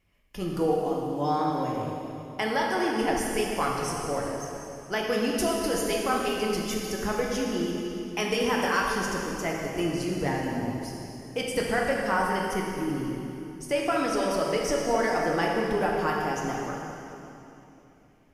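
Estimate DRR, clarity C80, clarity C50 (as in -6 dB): -2.0 dB, 1.5 dB, 0.0 dB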